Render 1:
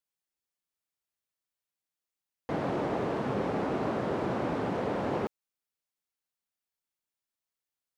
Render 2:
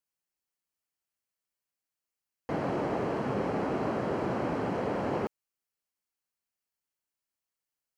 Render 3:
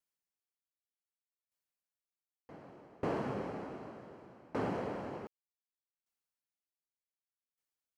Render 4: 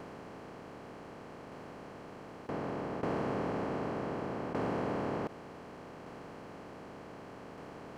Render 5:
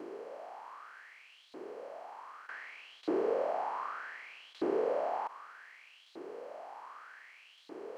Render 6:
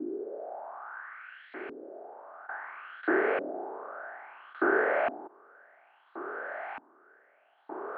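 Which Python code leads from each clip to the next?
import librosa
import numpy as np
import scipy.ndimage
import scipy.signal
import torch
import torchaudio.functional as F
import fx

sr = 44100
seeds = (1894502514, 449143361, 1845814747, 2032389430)

y1 = fx.notch(x, sr, hz=3600.0, q=6.7)
y2 = fx.tremolo_decay(y1, sr, direction='decaying', hz=0.66, depth_db=28)
y2 = F.gain(torch.from_numpy(y2), -1.5).numpy()
y3 = fx.bin_compress(y2, sr, power=0.2)
y3 = F.gain(torch.from_numpy(y3), -3.0).numpy()
y4 = fx.filter_lfo_highpass(y3, sr, shape='saw_up', hz=0.65, low_hz=320.0, high_hz=3900.0, q=6.6)
y4 = F.gain(torch.from_numpy(y4), -5.0).numpy()
y5 = fx.cabinet(y4, sr, low_hz=180.0, low_slope=24, high_hz=3800.0, hz=(200.0, 290.0, 490.0, 1000.0, 1500.0, 2400.0), db=(-7, -5, -10, -7, 9, -3))
y5 = fx.filter_lfo_lowpass(y5, sr, shape='saw_up', hz=0.59, low_hz=270.0, high_hz=2500.0, q=4.6)
y5 = F.gain(torch.from_numpy(y5), 8.0).numpy()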